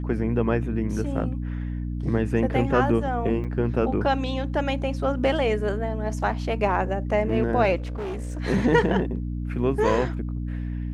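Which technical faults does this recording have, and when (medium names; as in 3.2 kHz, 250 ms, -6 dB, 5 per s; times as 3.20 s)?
hum 60 Hz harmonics 5 -29 dBFS
3.44–3.45 s: dropout 7.1 ms
7.76–8.40 s: clipped -27.5 dBFS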